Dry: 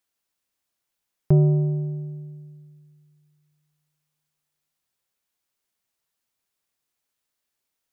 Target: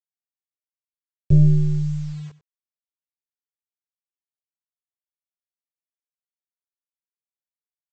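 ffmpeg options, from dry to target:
-af "aeval=exprs='if(lt(val(0),0),0.447*val(0),val(0))':c=same,afftfilt=real='re*gte(hypot(re,im),0.1)':imag='im*gte(hypot(re,im),0.1)':win_size=1024:overlap=0.75,equalizer=f=100:t=o:w=0.21:g=-4.5,flanger=delay=18.5:depth=2.5:speed=1.2,lowshelf=f=160:t=q:w=1.5:g=10.5,aresample=16000,acrusher=bits=7:mix=0:aa=0.000001,aresample=44100,aecho=1:1:94:0.141,volume=0.891"

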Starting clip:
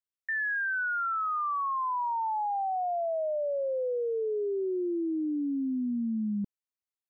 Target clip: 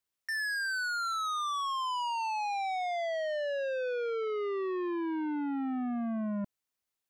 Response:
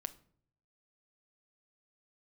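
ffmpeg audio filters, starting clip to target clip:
-af "asoftclip=type=tanh:threshold=0.0112,volume=2.24"

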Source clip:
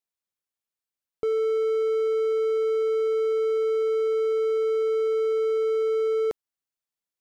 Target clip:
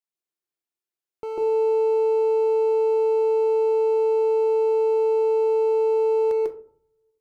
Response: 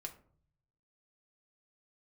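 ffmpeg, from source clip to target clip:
-filter_complex "[0:a]aeval=exprs='if(lt(val(0),0),0.251*val(0),val(0))':c=same,highpass=f=140:p=1,asplit=2[s0][s1];[s1]equalizer=f=350:w=1.6:g=10[s2];[1:a]atrim=start_sample=2205,adelay=146[s3];[s2][s3]afir=irnorm=-1:irlink=0,volume=1.5[s4];[s0][s4]amix=inputs=2:normalize=0,volume=0.794"

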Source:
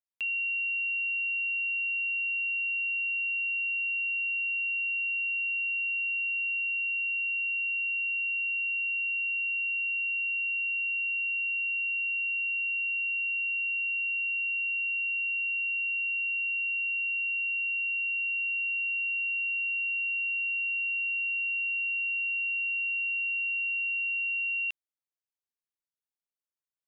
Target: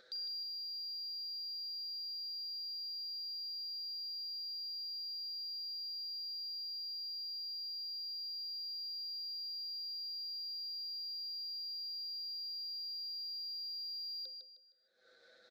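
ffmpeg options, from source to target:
-filter_complex "[0:a]anlmdn=0.398,equalizer=f=2600:w=0.51:g=11.5,bandreject=f=50:t=h:w=6,bandreject=f=100:t=h:w=6,bandreject=f=150:t=h:w=6,bandreject=f=200:t=h:w=6,bandreject=f=250:t=h:w=6,bandreject=f=300:t=h:w=6,acompressor=mode=upward:threshold=0.0282:ratio=2.5,asoftclip=type=tanh:threshold=0.0335,asplit=2[s0][s1];[s1]highpass=f=720:p=1,volume=22.4,asoftclip=type=tanh:threshold=0.0335[s2];[s0][s2]amix=inputs=2:normalize=0,lowpass=f=2600:p=1,volume=0.501,asplit=3[s3][s4][s5];[s3]bandpass=f=300:t=q:w=8,volume=1[s6];[s4]bandpass=f=870:t=q:w=8,volume=0.501[s7];[s5]bandpass=f=2240:t=q:w=8,volume=0.355[s8];[s6][s7][s8]amix=inputs=3:normalize=0,aecho=1:1:269|538|807|1076:0.447|0.152|0.0516|0.0176,asetrate=76440,aresample=44100,volume=3.16"

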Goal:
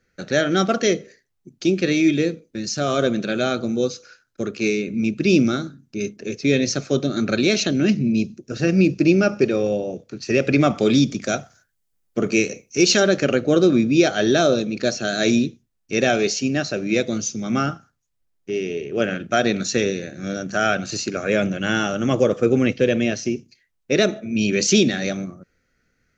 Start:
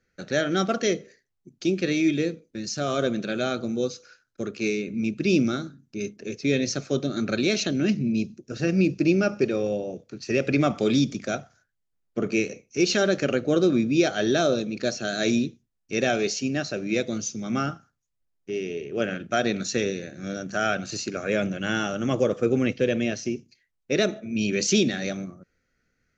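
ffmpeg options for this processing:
-filter_complex "[0:a]asettb=1/sr,asplit=3[s0][s1][s2];[s0]atrim=end=11.224[s3];[s1]atrim=start=11.22:end=13,asetpts=PTS-STARTPTS,afade=t=in:d=0.004:c=qsin,afade=t=out:st=1.776:d=0.004:c=qsin,highshelf=f=6000:g=9.5[s4];[s2]atrim=start=12.996[s5];[s3][s4]acrossfade=d=0.004:c1=hsin:c2=qsin[s6];[s6][s5]acrossfade=d=0.004:c1=qsin:c2=hsin,volume=1.78"

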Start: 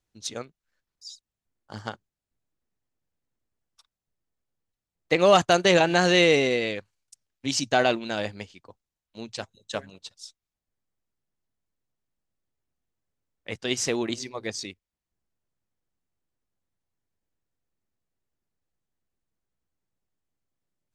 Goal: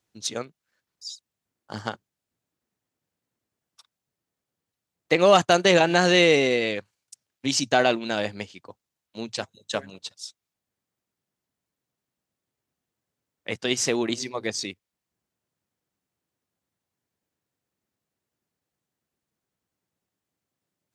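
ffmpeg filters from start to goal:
-filter_complex "[0:a]highpass=110,asplit=2[s0][s1];[s1]acompressor=threshold=0.0282:ratio=6,volume=0.794[s2];[s0][s2]amix=inputs=2:normalize=0"

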